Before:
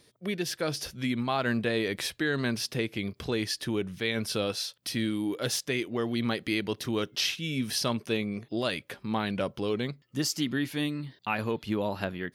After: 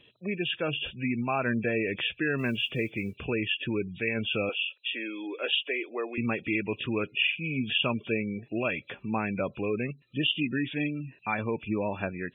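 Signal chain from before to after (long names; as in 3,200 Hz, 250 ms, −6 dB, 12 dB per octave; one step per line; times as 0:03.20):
hearing-aid frequency compression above 2,300 Hz 4 to 1
0:04.49–0:06.18: high-pass filter 360 Hz 24 dB per octave
gate on every frequency bin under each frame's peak −25 dB strong
0:02.38–0:03.17: noise that follows the level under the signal 35 dB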